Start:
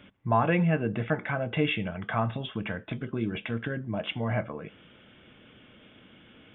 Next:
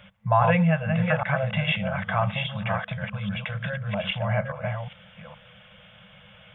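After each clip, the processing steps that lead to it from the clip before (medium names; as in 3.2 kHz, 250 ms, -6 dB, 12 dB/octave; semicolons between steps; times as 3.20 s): chunks repeated in reverse 411 ms, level -4.5 dB; FFT band-reject 210–480 Hz; trim +4 dB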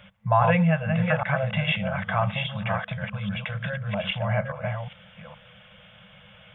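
no audible change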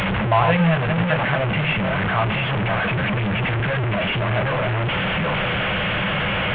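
one-bit delta coder 16 kbps, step -17.5 dBFS; trim +2.5 dB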